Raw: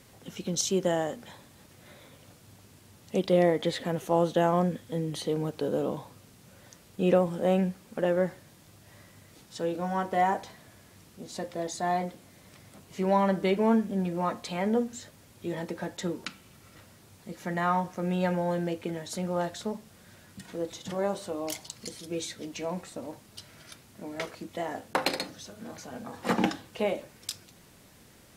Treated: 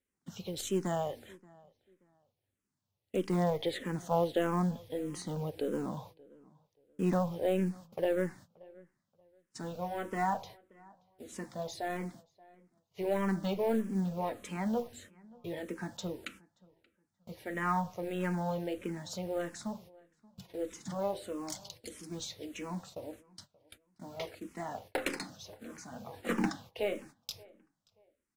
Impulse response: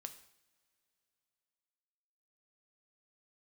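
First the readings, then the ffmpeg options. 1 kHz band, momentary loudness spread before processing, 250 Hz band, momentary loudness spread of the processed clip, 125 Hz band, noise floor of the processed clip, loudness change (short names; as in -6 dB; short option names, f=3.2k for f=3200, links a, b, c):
-6.5 dB, 18 LU, -5.5 dB, 17 LU, -4.5 dB, -85 dBFS, -6.0 dB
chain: -filter_complex "[0:a]agate=range=-28dB:threshold=-46dB:ratio=16:detection=peak,lowshelf=f=140:g=2,asplit=2[a][b];[b]aeval=exprs='clip(val(0),-1,0.0224)':c=same,volume=-5.5dB[c];[a][c]amix=inputs=2:normalize=0,acrusher=bits=7:mode=log:mix=0:aa=0.000001,asplit=2[d][e];[e]adelay=579,lowpass=f=2.3k:p=1,volume=-24dB,asplit=2[f][g];[g]adelay=579,lowpass=f=2.3k:p=1,volume=0.27[h];[d][f][h]amix=inputs=3:normalize=0,asplit=2[i][j];[j]afreqshift=-1.6[k];[i][k]amix=inputs=2:normalize=1,volume=-6dB"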